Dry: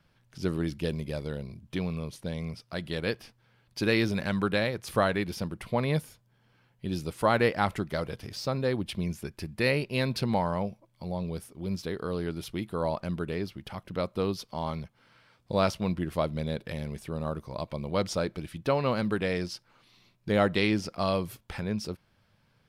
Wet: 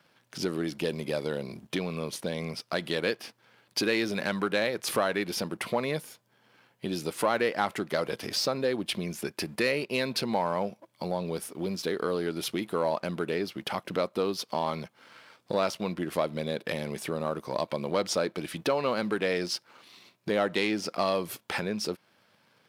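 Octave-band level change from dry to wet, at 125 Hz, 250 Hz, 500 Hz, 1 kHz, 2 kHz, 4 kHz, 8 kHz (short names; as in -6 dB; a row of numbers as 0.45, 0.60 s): -6.5, -1.5, +1.5, +0.5, +1.0, +4.0, +7.0 dB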